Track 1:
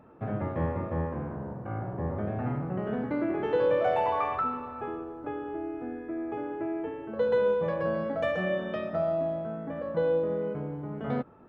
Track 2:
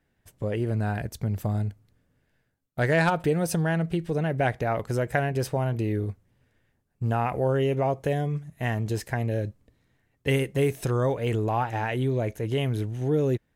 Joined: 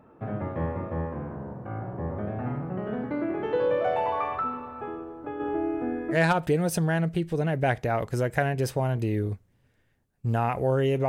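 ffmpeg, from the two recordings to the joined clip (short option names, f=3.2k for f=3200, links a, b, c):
-filter_complex "[0:a]asplit=3[a][b][c];[a]afade=t=out:st=5.39:d=0.02[d];[b]acontrast=80,afade=t=in:st=5.39:d=0.02,afade=t=out:st=6.18:d=0.02[e];[c]afade=t=in:st=6.18:d=0.02[f];[d][e][f]amix=inputs=3:normalize=0,apad=whole_dur=11.08,atrim=end=11.08,atrim=end=6.18,asetpts=PTS-STARTPTS[g];[1:a]atrim=start=2.87:end=7.85,asetpts=PTS-STARTPTS[h];[g][h]acrossfade=d=0.08:c1=tri:c2=tri"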